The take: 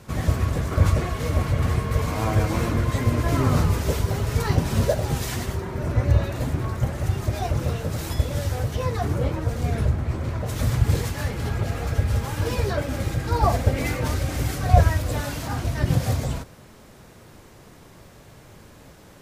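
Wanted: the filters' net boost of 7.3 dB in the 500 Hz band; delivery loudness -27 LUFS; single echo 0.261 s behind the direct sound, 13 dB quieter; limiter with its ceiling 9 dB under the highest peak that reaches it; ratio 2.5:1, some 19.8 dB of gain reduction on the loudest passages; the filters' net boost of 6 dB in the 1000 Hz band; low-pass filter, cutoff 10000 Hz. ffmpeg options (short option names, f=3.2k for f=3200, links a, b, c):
-af "lowpass=10k,equalizer=f=500:t=o:g=7.5,equalizer=f=1k:t=o:g=5,acompressor=threshold=-39dB:ratio=2.5,alimiter=level_in=4dB:limit=-24dB:level=0:latency=1,volume=-4dB,aecho=1:1:261:0.224,volume=11.5dB"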